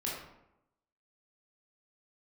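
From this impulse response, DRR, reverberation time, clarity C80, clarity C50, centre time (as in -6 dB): -5.5 dB, 0.85 s, 5.0 dB, 1.5 dB, 55 ms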